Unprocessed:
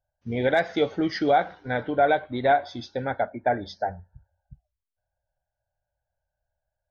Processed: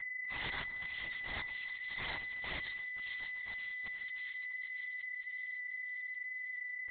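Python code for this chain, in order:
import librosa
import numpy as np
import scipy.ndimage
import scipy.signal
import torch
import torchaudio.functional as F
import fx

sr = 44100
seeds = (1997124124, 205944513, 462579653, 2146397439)

y = fx.bit_reversed(x, sr, seeds[0], block=256)
y = fx.spec_gate(y, sr, threshold_db=-30, keep='weak')
y = y + 0.34 * np.pad(y, (int(7.5 * sr / 1000.0), 0))[:len(y)]
y = fx.level_steps(y, sr, step_db=24)
y = fx.auto_swell(y, sr, attack_ms=168.0)
y = y + 10.0 ** (-53.0 / 20.0) * np.sin(2.0 * np.pi * 2000.0 * np.arange(len(y)) / sr)
y = fx.echo_wet_highpass(y, sr, ms=571, feedback_pct=60, hz=2700.0, wet_db=-4.5)
y = fx.room_shoebox(y, sr, seeds[1], volume_m3=700.0, walls='furnished', distance_m=0.55)
y = fx.lpc_vocoder(y, sr, seeds[2], excitation='whisper', order=10)
y = F.gain(torch.from_numpy(y), 13.5).numpy()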